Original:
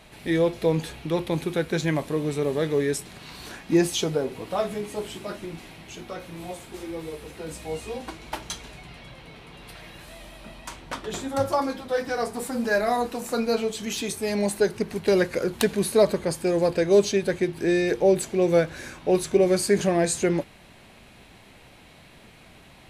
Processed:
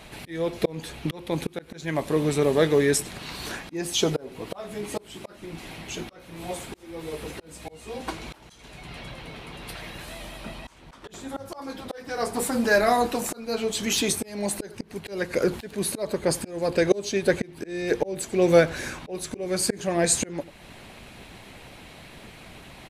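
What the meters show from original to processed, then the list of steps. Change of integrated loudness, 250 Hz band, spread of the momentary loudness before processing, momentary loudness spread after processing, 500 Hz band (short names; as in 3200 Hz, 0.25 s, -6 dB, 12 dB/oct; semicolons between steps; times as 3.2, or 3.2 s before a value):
-1.5 dB, -2.5 dB, 20 LU, 23 LU, -2.5 dB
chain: echo 92 ms -20.5 dB; auto swell 0.478 s; harmonic-percussive split percussive +5 dB; gain +2.5 dB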